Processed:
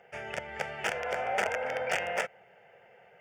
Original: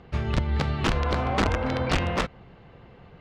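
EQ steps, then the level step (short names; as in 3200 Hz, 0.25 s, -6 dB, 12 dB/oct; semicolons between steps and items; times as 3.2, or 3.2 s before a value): HPF 430 Hz 12 dB/oct; high shelf 5900 Hz +4.5 dB; fixed phaser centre 1100 Hz, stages 6; 0.0 dB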